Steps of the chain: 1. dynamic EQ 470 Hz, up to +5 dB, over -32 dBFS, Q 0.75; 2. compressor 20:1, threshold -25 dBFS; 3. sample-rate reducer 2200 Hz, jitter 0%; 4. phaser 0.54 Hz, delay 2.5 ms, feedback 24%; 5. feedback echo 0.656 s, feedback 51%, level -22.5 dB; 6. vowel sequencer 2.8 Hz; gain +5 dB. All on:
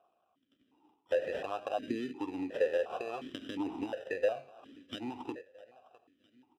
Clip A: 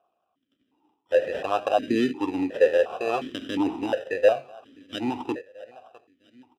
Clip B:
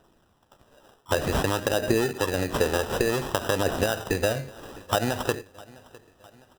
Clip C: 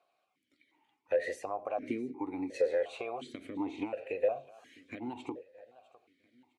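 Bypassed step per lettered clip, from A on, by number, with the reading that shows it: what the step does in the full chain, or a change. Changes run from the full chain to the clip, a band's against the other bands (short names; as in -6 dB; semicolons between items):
2, mean gain reduction 9.0 dB; 6, 125 Hz band +14.0 dB; 3, 4 kHz band -5.5 dB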